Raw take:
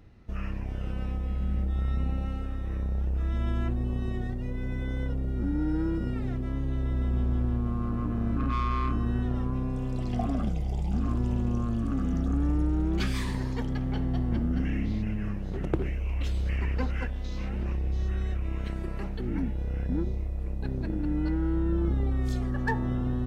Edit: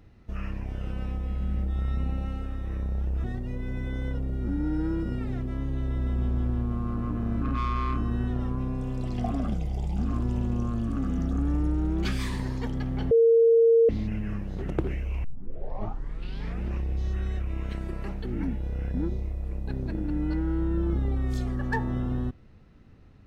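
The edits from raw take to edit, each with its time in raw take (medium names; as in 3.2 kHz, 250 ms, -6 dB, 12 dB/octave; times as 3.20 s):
3.24–4.19 s: delete
14.06–14.84 s: bleep 459 Hz -15 dBFS
16.19 s: tape start 1.43 s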